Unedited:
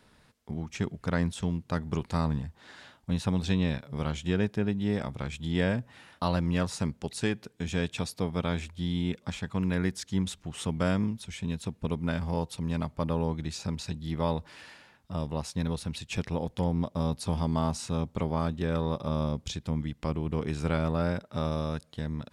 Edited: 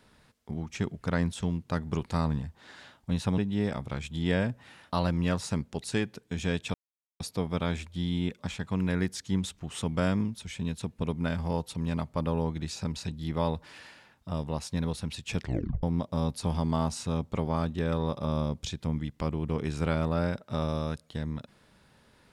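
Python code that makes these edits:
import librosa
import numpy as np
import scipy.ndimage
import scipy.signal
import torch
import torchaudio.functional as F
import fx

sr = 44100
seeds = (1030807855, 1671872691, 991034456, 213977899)

y = fx.edit(x, sr, fx.cut(start_s=3.38, length_s=1.29),
    fx.insert_silence(at_s=8.03, length_s=0.46),
    fx.tape_stop(start_s=16.24, length_s=0.42), tone=tone)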